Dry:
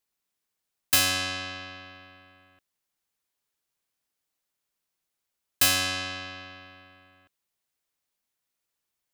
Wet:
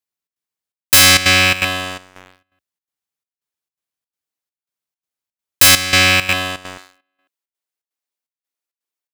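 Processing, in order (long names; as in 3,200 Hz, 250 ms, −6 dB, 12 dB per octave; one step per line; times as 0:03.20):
loose part that buzzes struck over −47 dBFS, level −17 dBFS
high-pass filter 48 Hz 24 dB per octave, from 0:06.78 250 Hz
leveller curve on the samples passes 5
gate pattern "xxx.xxxx..xxx." 167 BPM −12 dB
level +4.5 dB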